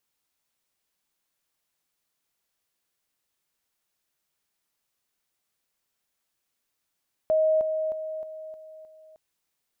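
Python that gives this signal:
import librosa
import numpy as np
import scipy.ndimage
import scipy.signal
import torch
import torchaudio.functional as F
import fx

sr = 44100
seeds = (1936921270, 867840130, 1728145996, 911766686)

y = fx.level_ladder(sr, hz=629.0, from_db=-18.5, step_db=-6.0, steps=6, dwell_s=0.31, gap_s=0.0)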